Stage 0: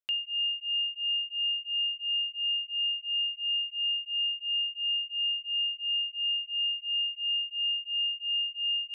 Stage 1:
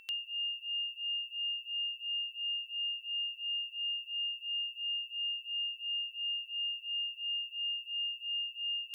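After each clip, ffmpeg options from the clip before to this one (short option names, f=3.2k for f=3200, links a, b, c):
-af "crystalizer=i=8.5:c=0,aeval=exprs='val(0)+0.02*sin(2*PI*2700*n/s)':c=same,equalizer=f=2.6k:t=o:w=0.38:g=-13.5,volume=-8.5dB"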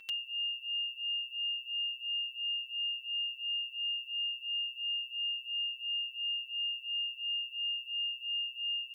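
-af "aecho=1:1:6.3:0.65"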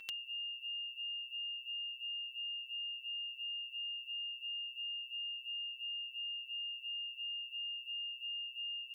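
-af "acompressor=threshold=-43dB:ratio=6,volume=2dB"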